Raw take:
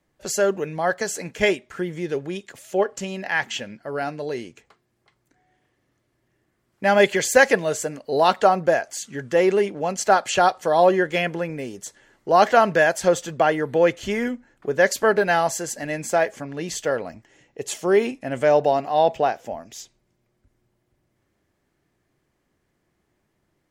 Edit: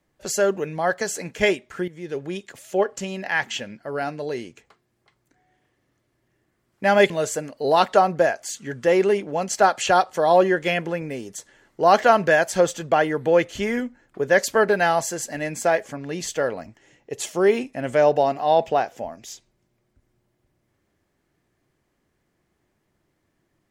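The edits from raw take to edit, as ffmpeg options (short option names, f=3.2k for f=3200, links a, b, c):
-filter_complex "[0:a]asplit=3[a][b][c];[a]atrim=end=1.88,asetpts=PTS-STARTPTS,afade=t=out:st=1.876:d=0.004:c=hsin:silence=0.199526[d];[b]atrim=start=1.88:end=7.102,asetpts=PTS-STARTPTS,afade=t=in:d=0.44:silence=0.199526[e];[c]atrim=start=7.578[f];[d][e]concat=n=2:v=0:a=1[g];[g][f]acrossfade=d=0.004:c1=hsin:c2=hsin"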